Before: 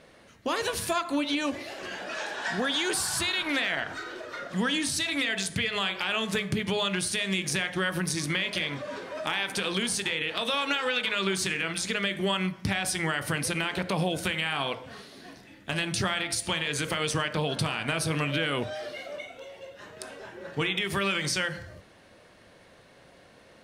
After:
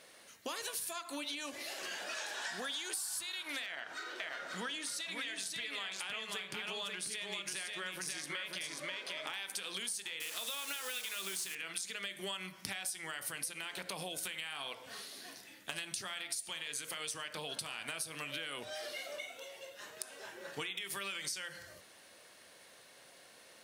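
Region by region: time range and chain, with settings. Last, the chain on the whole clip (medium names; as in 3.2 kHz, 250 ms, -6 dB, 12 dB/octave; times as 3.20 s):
3.66–9.34 s: high-pass 190 Hz 6 dB/octave + treble shelf 6 kHz -11.5 dB + delay 537 ms -3.5 dB
10.20–11.55 s: one-bit delta coder 64 kbps, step -28.5 dBFS + modulation noise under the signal 24 dB
whole clip: RIAA curve recording; compression 6:1, threshold -33 dBFS; trim -5 dB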